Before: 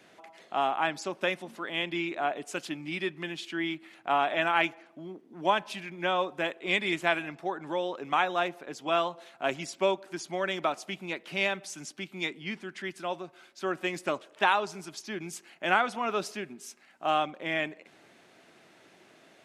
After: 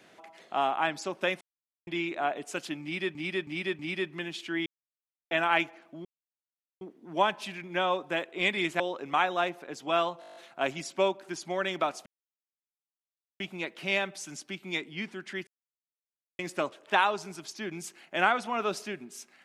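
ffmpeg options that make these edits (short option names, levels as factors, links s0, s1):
-filter_complex "[0:a]asplit=21[s0][s1][s2][s3][s4][s5][s6][s7][s8][s9][s10][s11][s12][s13][s14][s15][s16][s17][s18][s19][s20];[s0]atrim=end=1.41,asetpts=PTS-STARTPTS,afade=t=out:st=1.406:d=0.004:c=hsin[s21];[s1]atrim=start=1.41:end=1.87,asetpts=PTS-STARTPTS,volume=0[s22];[s2]atrim=start=1.87:end=3.152,asetpts=PTS-STARTPTS,afade=t=in:d=0.004:c=hsin[s23];[s3]atrim=start=2.828:end=3.152[s24];[s4]atrim=start=2.828:end=3.152[s25];[s5]atrim=start=2.828:end=3.7,asetpts=PTS-STARTPTS,afade=t=out:st=0.868:d=0.004:c=hsin[s26];[s6]atrim=start=3.7:end=4.35,asetpts=PTS-STARTPTS,volume=0[s27];[s7]atrim=start=4.35:end=5.09,asetpts=PTS-STARTPTS,afade=t=in:d=0.004:c=hsin,afade=t=out:st=0.736:d=0.004:c=hsin,apad=pad_dur=0.76[s28];[s8]atrim=start=5.09:end=7.082,asetpts=PTS-STARTPTS,afade=t=in:d=0.004:c=hsin[s29];[s9]atrim=start=7.788:end=9.212[s30];[s10]atrim=start=9.188:end=9.212[s31];[s11]atrim=start=9.188:end=9.212[s32];[s12]atrim=start=9.188:end=9.212[s33];[s13]atrim=start=9.188:end=9.212[s34];[s14]atrim=start=9.188:end=9.212[s35];[s15]atrim=start=9.188:end=9.212[s36];[s16]atrim=start=9.188:end=9.212[s37];[s17]atrim=start=9.188:end=10.89,asetpts=PTS-STARTPTS,afade=t=out:st=1.698:d=0.004:c=hsin,apad=pad_dur=1.34[s38];[s18]atrim=start=10.89:end=12.96,asetpts=PTS-STARTPTS,afade=t=in:d=0.004:c=hsin,afade=t=out:st=2.066:d=0.004:c=hsin[s39];[s19]atrim=start=12.96:end=13.88,asetpts=PTS-STARTPTS,volume=0[s40];[s20]atrim=start=13.88,asetpts=PTS-STARTPTS,afade=t=in:d=0.004:c=hsin[s41];[s21][s22][s23]concat=n=3:v=0:a=1[s42];[s42][s24]acrossfade=d=0.004:c1=hsin:c2=hsin[s43];[s43][s25]acrossfade=d=0.004:c1=hsin:c2=hsin[s44];[s26][s27][s28][s29]concat=n=4:v=0:a=1[s45];[s44][s45]acrossfade=d=0.004:c1=hsin:c2=hsin[s46];[s46][s30]acrossfade=d=0.004:c1=hsin:c2=hsin[s47];[s47][s31]acrossfade=d=0.004:c1=hsin:c2=hsin[s48];[s48][s32]acrossfade=d=0.004:c1=hsin:c2=hsin[s49];[s49][s33]acrossfade=d=0.004:c1=hsin:c2=hsin[s50];[s50][s34]acrossfade=d=0.004:c1=hsin:c2=hsin[s51];[s51][s35]acrossfade=d=0.004:c1=hsin:c2=hsin[s52];[s52][s36]acrossfade=d=0.004:c1=hsin:c2=hsin[s53];[s53][s37]acrossfade=d=0.004:c1=hsin:c2=hsin[s54];[s38][s39][s40][s41]concat=n=4:v=0:a=1[s55];[s54][s55]acrossfade=d=0.004:c1=hsin:c2=hsin"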